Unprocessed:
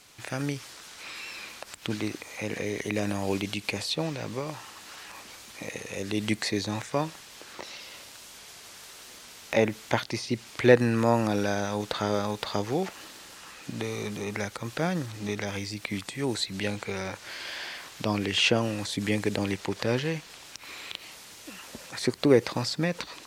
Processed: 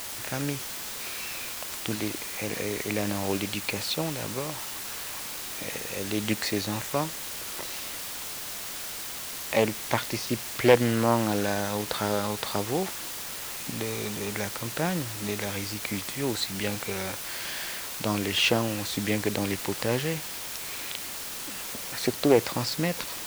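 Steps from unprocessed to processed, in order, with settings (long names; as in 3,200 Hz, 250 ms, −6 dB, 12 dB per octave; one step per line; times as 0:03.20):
bit-depth reduction 6 bits, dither triangular
highs frequency-modulated by the lows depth 0.23 ms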